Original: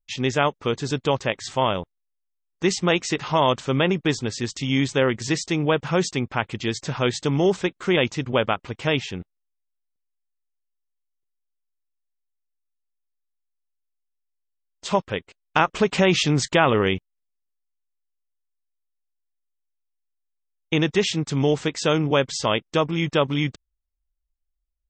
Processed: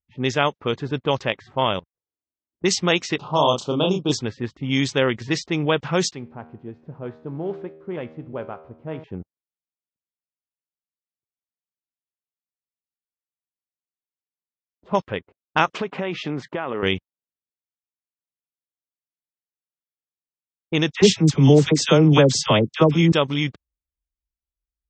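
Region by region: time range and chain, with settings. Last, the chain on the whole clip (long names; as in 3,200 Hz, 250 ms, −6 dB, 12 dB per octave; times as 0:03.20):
0:01.79–0:02.64: downward compressor 5 to 1, threshold −56 dBFS + flanger swept by the level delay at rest 3.7 ms, full sweep at −50 dBFS + leveller curve on the samples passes 3
0:03.18–0:04.12: Butterworth band-reject 1,900 Hz, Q 0.91 + low-shelf EQ 80 Hz −9 dB + double-tracking delay 33 ms −3.5 dB
0:06.12–0:09.04: spike at every zero crossing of −23 dBFS + low-pass filter 4,600 Hz + tuned comb filter 79 Hz, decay 1.3 s, mix 70%
0:15.74–0:16.83: high-pass filter 200 Hz + downward compressor 8 to 1, threshold −21 dBFS
0:20.92–0:23.12: low-shelf EQ 450 Hz +11 dB + all-pass dispersion lows, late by 69 ms, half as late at 950 Hz
whole clip: high-pass filter 61 Hz; low-pass that shuts in the quiet parts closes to 340 Hz, open at −15.5 dBFS; dynamic equaliser 5,600 Hz, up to +7 dB, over −41 dBFS, Q 0.8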